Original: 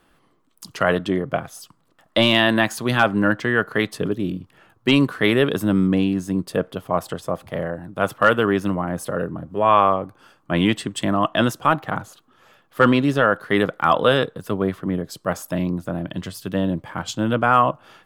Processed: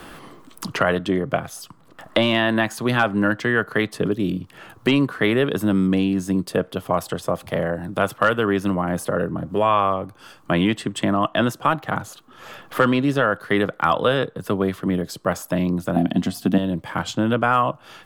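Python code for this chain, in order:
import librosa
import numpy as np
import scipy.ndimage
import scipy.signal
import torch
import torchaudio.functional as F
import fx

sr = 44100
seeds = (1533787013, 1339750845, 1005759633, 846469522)

y = fx.small_body(x, sr, hz=(240.0, 710.0), ring_ms=45, db=17, at=(15.96, 16.58))
y = fx.band_squash(y, sr, depth_pct=70)
y = y * librosa.db_to_amplitude(-1.0)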